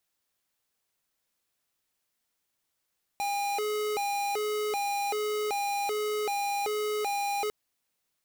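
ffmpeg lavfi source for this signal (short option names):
-f lavfi -i "aevalsrc='0.0316*(2*lt(mod((615.5*t+192.5/1.3*(0.5-abs(mod(1.3*t,1)-0.5))),1),0.5)-1)':d=4.3:s=44100"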